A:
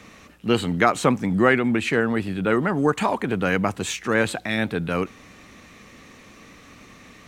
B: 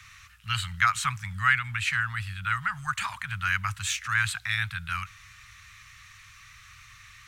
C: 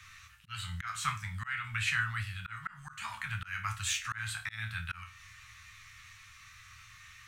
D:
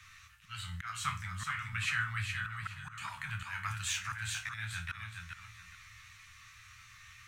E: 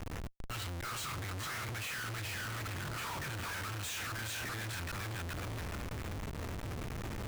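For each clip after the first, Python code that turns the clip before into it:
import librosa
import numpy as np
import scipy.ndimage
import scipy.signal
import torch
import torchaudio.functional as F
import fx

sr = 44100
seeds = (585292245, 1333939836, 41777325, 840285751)

y1 = scipy.signal.sosfilt(scipy.signal.cheby1(3, 1.0, [110.0, 1300.0], 'bandstop', fs=sr, output='sos'), x)
y2 = fx.resonator_bank(y1, sr, root=38, chord='minor', decay_s=0.28)
y2 = fx.auto_swell(y2, sr, attack_ms=295.0)
y2 = F.gain(torch.from_numpy(y2), 7.5).numpy()
y3 = fx.echo_feedback(y2, sr, ms=418, feedback_pct=24, wet_db=-5.5)
y3 = F.gain(torch.from_numpy(y3), -2.5).numpy()
y4 = fx.schmitt(y3, sr, flips_db=-49.5)
y4 = F.gain(torch.from_numpy(y4), 1.0).numpy()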